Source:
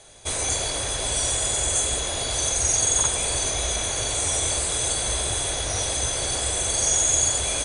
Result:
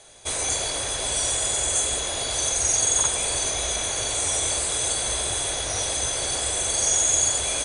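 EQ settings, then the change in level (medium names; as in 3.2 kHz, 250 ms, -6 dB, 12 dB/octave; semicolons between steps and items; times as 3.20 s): bass shelf 210 Hz -6 dB; 0.0 dB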